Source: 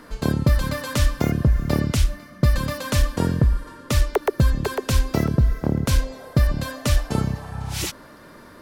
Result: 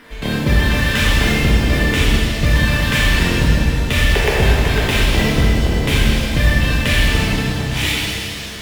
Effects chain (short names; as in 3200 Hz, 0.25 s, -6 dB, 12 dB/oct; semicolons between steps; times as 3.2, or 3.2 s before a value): band shelf 2500 Hz +13 dB 1.3 oct; in parallel at -8.5 dB: decimation with a swept rate 12×, swing 100% 2 Hz; on the sum: shimmer reverb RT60 2.4 s, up +7 st, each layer -8 dB, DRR -7 dB; gain -5 dB